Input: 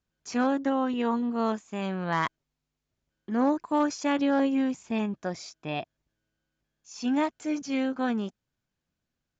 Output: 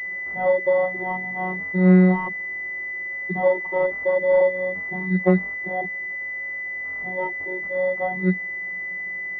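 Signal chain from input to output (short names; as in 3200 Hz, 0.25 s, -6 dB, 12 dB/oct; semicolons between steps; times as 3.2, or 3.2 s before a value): switching spikes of -24.5 dBFS; bell 430 Hz +9.5 dB 2.7 oct; vocoder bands 32, saw 184 Hz; pulse-width modulation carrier 2000 Hz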